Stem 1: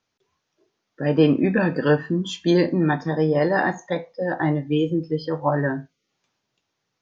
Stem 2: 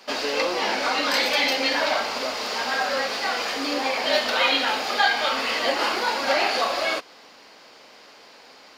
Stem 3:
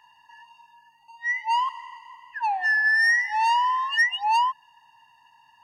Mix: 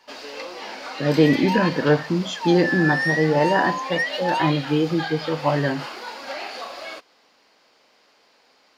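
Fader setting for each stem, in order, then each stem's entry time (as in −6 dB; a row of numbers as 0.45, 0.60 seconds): +0.5, −10.5, −4.0 decibels; 0.00, 0.00, 0.00 seconds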